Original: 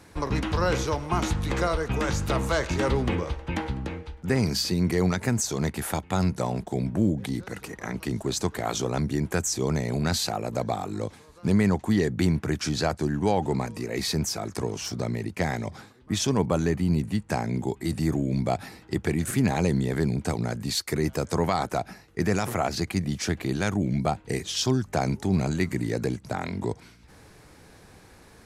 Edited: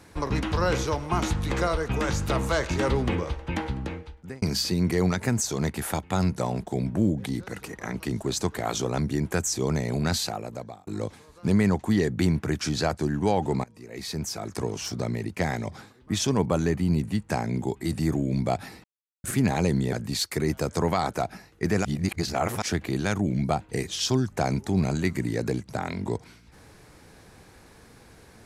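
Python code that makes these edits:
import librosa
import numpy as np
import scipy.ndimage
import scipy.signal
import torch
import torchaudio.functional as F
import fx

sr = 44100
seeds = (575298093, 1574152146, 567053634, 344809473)

y = fx.edit(x, sr, fx.fade_out_span(start_s=3.92, length_s=0.5),
    fx.fade_out_span(start_s=10.13, length_s=0.74),
    fx.fade_in_from(start_s=13.64, length_s=1.01, floor_db=-22.5),
    fx.silence(start_s=18.84, length_s=0.4),
    fx.cut(start_s=19.93, length_s=0.56),
    fx.reverse_span(start_s=22.41, length_s=0.77), tone=tone)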